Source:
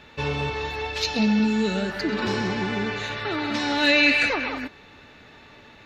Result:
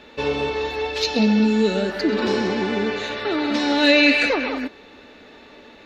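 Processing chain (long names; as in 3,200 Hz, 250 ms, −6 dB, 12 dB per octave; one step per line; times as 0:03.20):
octave-band graphic EQ 125/250/500/4,000 Hz −11/+7/+7/+3 dB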